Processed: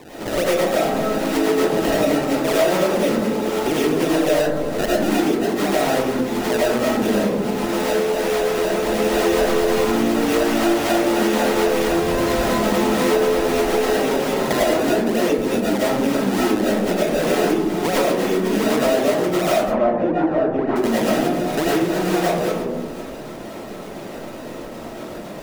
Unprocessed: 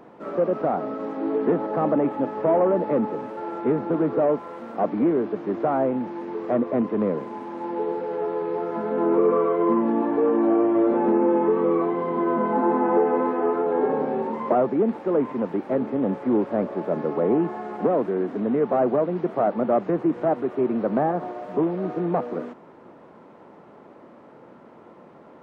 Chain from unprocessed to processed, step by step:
sample-and-hold swept by an LFO 28×, swing 100% 4 Hz
0:19.59–0:20.76: Chebyshev low-pass filter 1,200 Hz, order 2
comb and all-pass reverb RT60 0.85 s, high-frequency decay 0.25×, pre-delay 65 ms, DRR −9 dB
downward compressor 3 to 1, threshold −24 dBFS, peak gain reduction 15.5 dB
level +4.5 dB

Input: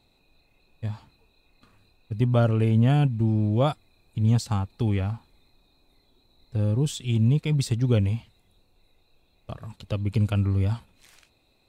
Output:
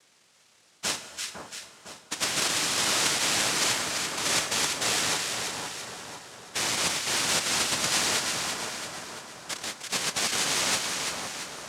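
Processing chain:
cochlear-implant simulation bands 1
in parallel at +2.5 dB: output level in coarse steps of 10 dB
on the sum: dense smooth reverb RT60 3.5 s, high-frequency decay 0.55×, DRR 11.5 dB
reversed playback
downward compressor, threshold −23 dBFS, peak gain reduction 13 dB
reversed playback
echo with a time of its own for lows and highs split 1,400 Hz, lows 504 ms, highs 339 ms, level −5 dB
level −1.5 dB

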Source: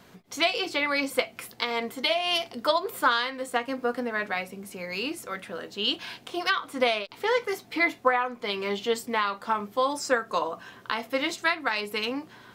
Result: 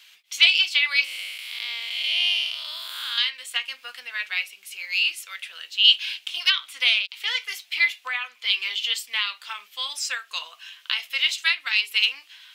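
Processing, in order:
0:01.04–0:03.18: spectrum smeared in time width 293 ms
high-pass with resonance 2,800 Hz, resonance Q 2.8
level +4 dB

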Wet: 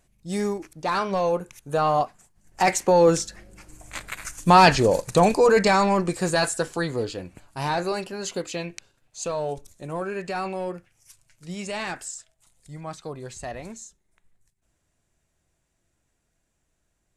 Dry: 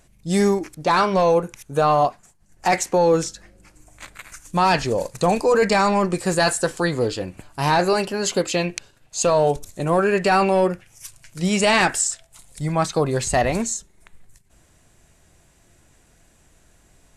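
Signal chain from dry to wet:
source passing by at 0:04.20, 7 m/s, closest 6 metres
level +5 dB

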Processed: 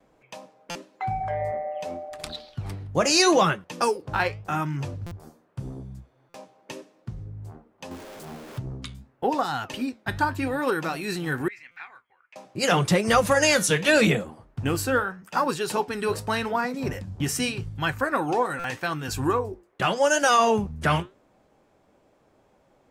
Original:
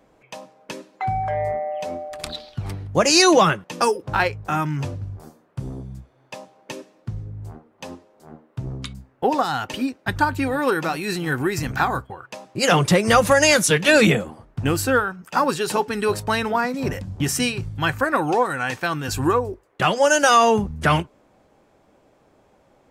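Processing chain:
0:07.91–0:08.59: converter with a step at zero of −32.5 dBFS
noise gate with hold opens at −54 dBFS
flanger 0.84 Hz, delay 4.5 ms, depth 8.7 ms, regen −77%
0:11.48–0:12.36: resonant band-pass 2,200 Hz, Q 6.7
buffer that repeats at 0:00.70/0:05.06/0:06.29/0:11.71/0:18.59, samples 256, times 8

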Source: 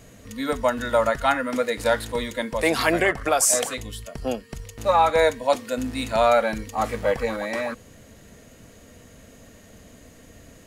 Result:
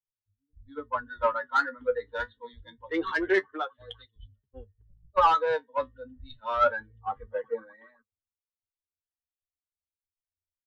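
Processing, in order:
spectral dynamics exaggerated over time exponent 2
downsampling to 8,000 Hz
phaser with its sweep stopped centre 670 Hz, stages 6
mid-hump overdrive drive 15 dB, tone 2,500 Hz, clips at −13 dBFS
flanger 0.27 Hz, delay 8.3 ms, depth 6.5 ms, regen +42%
multiband delay without the direct sound lows, highs 280 ms, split 170 Hz
multiband upward and downward expander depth 100%

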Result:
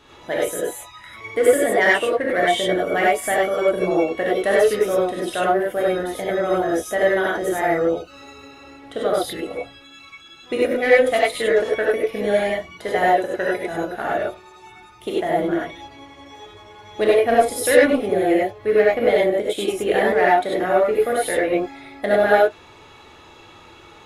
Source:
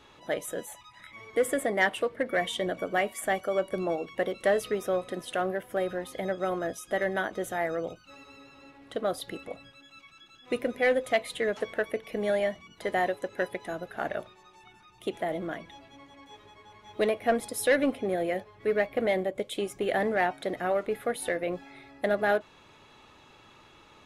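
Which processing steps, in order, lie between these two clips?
reverb whose tail is shaped and stops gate 120 ms rising, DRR −5 dB
level +3.5 dB

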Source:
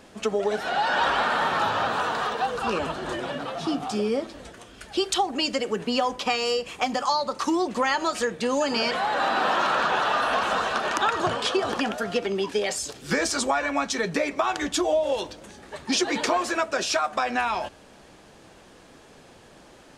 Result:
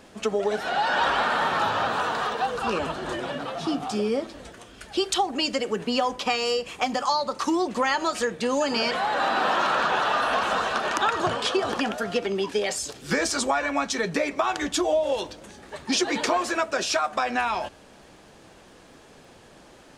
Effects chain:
surface crackle 25 per second −55 dBFS

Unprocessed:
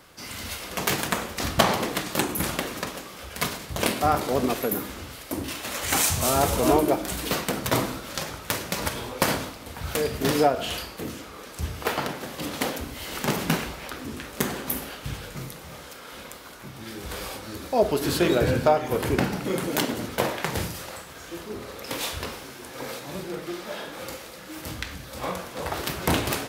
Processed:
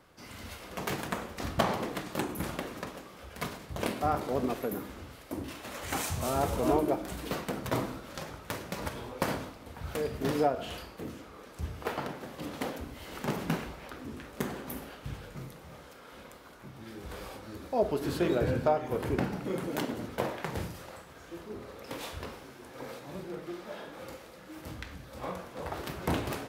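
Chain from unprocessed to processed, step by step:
high-shelf EQ 2,200 Hz −9 dB
level −6 dB

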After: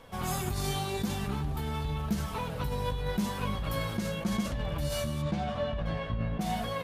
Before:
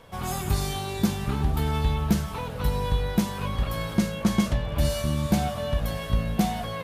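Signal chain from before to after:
0:05.21–0:06.40: low-pass filter 4,200 Hz → 2,200 Hz 12 dB per octave
in parallel at +2 dB: compressor whose output falls as the input rises −28 dBFS, ratio −0.5
on the sum: flanger 0.89 Hz, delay 3.4 ms, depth 5.5 ms, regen +60%
level −6.5 dB

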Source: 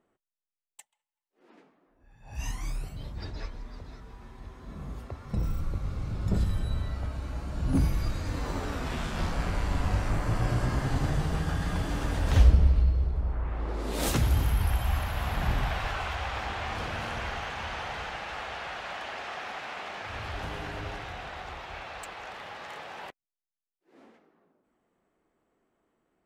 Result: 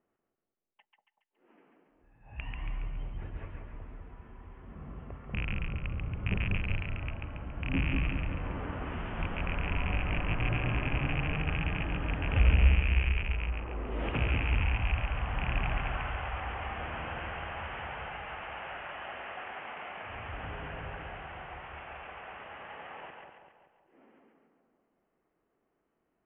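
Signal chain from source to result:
loose part that buzzes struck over −25 dBFS, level −16 dBFS
Butterworth low-pass 3,100 Hz 96 dB per octave
on a send: echo with a time of its own for lows and highs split 950 Hz, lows 190 ms, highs 139 ms, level −3 dB
on the sum: level −6 dB

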